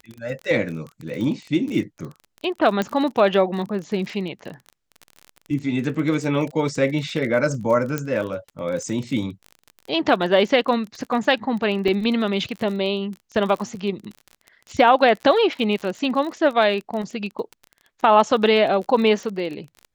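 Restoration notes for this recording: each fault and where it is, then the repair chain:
crackle 29 per s -29 dBFS
2.82 s: pop -10 dBFS
7.98 s: pop -11 dBFS
11.88 s: dropout 3.6 ms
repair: de-click; interpolate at 11.88 s, 3.6 ms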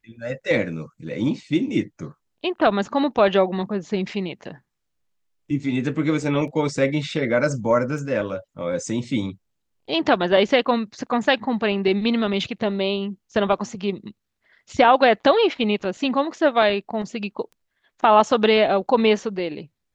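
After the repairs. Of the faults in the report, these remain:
7.98 s: pop

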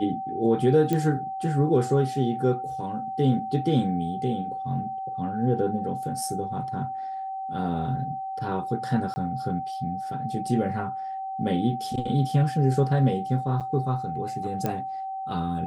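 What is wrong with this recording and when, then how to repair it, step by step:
whine 770 Hz -30 dBFS
0.93 s: pop -13 dBFS
9.14–9.16 s: dropout 20 ms
13.60–13.61 s: dropout 7.7 ms
14.66 s: pop -13 dBFS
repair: de-click; band-stop 770 Hz, Q 30; interpolate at 9.14 s, 20 ms; interpolate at 13.60 s, 7.7 ms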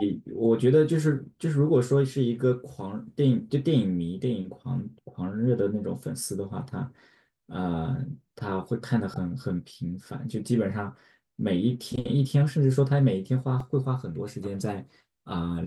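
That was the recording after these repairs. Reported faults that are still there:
nothing left

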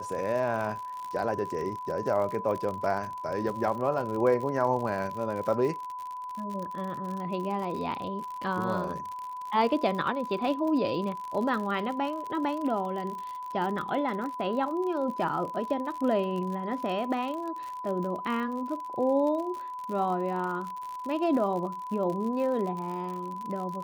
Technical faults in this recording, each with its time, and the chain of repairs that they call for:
crackle 60 per s -34 dBFS
whine 1 kHz -35 dBFS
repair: de-click; band-stop 1 kHz, Q 30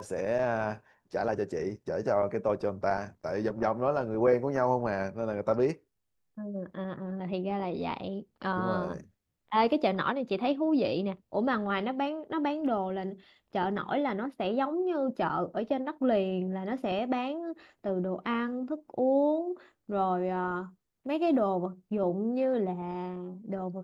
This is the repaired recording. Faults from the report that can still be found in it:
nothing left

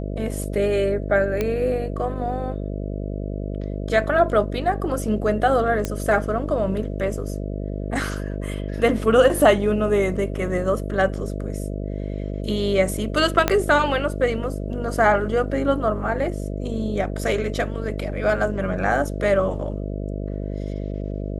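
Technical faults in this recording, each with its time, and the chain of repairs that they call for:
buzz 50 Hz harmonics 13 -28 dBFS
1.41 s: pop -10 dBFS
5.85 s: pop -10 dBFS
13.48 s: pop -3 dBFS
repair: de-click; de-hum 50 Hz, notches 13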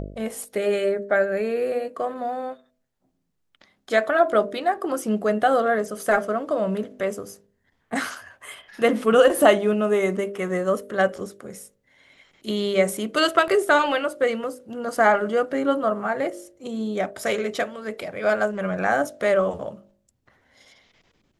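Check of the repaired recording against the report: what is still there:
13.48 s: pop

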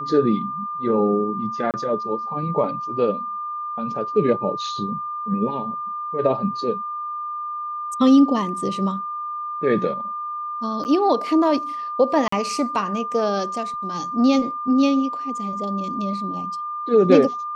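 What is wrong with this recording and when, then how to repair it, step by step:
whine 1.2 kHz -26 dBFS
1.71–1.74 s: dropout 28 ms
10.84–10.85 s: dropout 9.3 ms
12.28–12.32 s: dropout 44 ms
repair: band-stop 1.2 kHz, Q 30; interpolate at 1.71 s, 28 ms; interpolate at 10.84 s, 9.3 ms; interpolate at 12.28 s, 44 ms

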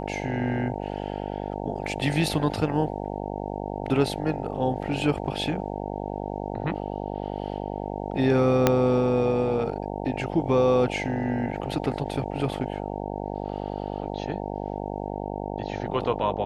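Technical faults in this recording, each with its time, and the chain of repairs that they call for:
buzz 50 Hz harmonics 18 -32 dBFS
8.67 s: pop -4 dBFS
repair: de-click; de-hum 50 Hz, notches 18

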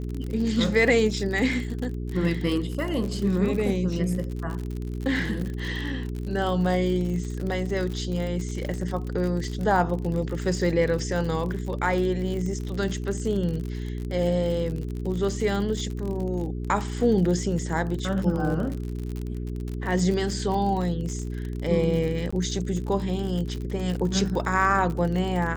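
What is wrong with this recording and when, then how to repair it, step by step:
crackle 52 per s -30 dBFS
hum 60 Hz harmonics 7 -31 dBFS
22.31–22.32 s: dropout 15 ms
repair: de-click; de-hum 60 Hz, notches 7; interpolate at 22.31 s, 15 ms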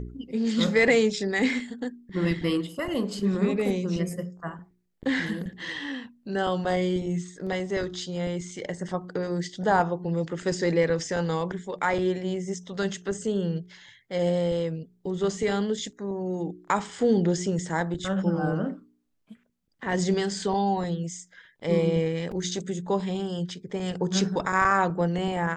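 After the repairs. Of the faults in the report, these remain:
nothing left

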